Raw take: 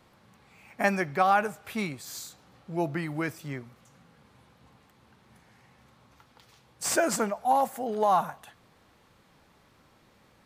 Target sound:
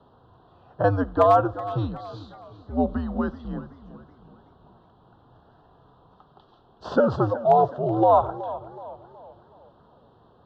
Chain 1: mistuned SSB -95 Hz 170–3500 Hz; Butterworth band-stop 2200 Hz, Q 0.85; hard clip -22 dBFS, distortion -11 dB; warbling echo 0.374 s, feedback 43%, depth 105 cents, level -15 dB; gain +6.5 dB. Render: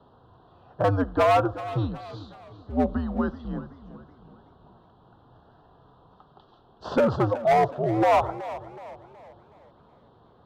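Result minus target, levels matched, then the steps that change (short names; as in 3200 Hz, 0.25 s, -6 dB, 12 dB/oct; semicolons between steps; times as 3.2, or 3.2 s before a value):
hard clip: distortion +22 dB
change: hard clip -14 dBFS, distortion -34 dB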